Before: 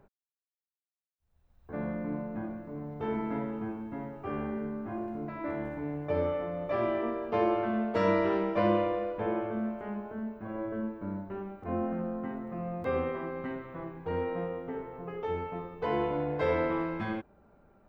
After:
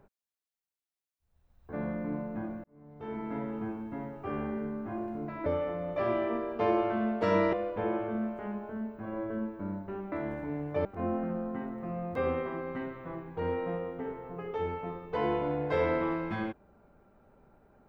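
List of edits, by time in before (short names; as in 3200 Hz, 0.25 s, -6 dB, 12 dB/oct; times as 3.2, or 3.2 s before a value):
2.64–3.59 fade in
5.46–6.19 move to 11.54
8.26–8.95 cut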